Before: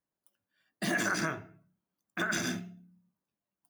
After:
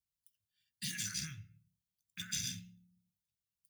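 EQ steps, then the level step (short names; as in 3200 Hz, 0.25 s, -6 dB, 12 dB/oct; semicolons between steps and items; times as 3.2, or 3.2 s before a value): Chebyshev band-stop 110–3100 Hz, order 2; passive tone stack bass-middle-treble 6-0-2; +15.0 dB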